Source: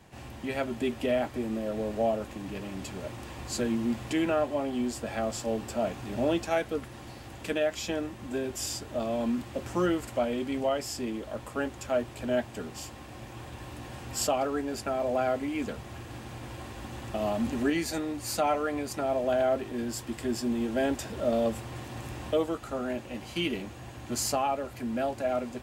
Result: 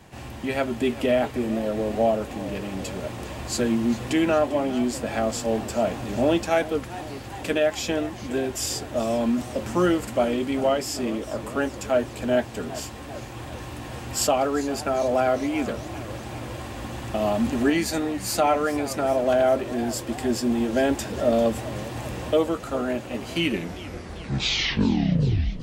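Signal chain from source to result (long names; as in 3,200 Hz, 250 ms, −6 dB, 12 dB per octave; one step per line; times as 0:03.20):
turntable brake at the end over 2.28 s
feedback echo with a swinging delay time 401 ms, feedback 68%, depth 180 cents, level −16.5 dB
level +6 dB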